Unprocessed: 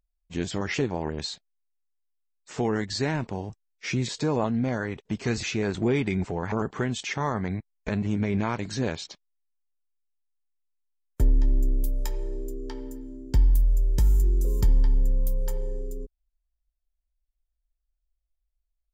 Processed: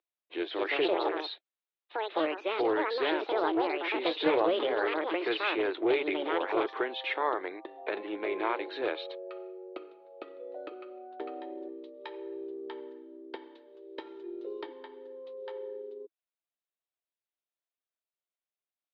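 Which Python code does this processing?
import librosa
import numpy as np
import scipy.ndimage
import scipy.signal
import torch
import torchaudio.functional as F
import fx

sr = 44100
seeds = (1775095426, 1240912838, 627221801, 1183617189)

y = fx.echo_pitch(x, sr, ms=329, semitones=6, count=2, db_per_echo=-3.0)
y = scipy.signal.sosfilt(scipy.signal.cheby1(5, 1.0, [320.0, 3900.0], 'bandpass', fs=sr, output='sos'), y)
y = fx.doppler_dist(y, sr, depth_ms=0.11)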